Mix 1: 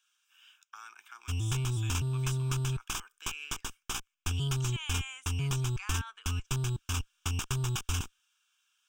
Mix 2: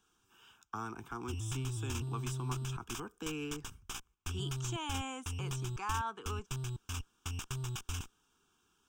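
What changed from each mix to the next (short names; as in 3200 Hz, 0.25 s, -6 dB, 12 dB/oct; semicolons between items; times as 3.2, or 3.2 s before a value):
speech: remove resonant high-pass 2100 Hz, resonance Q 1.8; background -7.5 dB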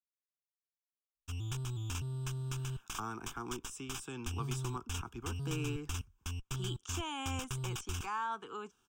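speech: entry +2.25 s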